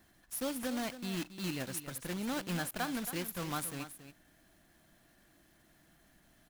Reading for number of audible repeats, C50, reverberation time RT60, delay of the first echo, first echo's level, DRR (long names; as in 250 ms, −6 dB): 1, no reverb audible, no reverb audible, 275 ms, −12.0 dB, no reverb audible